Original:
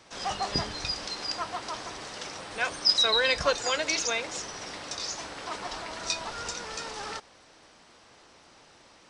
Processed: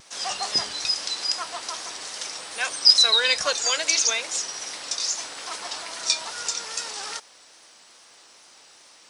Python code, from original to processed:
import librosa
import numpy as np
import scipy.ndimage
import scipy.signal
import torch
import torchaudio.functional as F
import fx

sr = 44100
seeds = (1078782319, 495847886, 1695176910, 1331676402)

y = fx.riaa(x, sr, side='recording')
y = fx.vibrato(y, sr, rate_hz=2.4, depth_cents=54.0)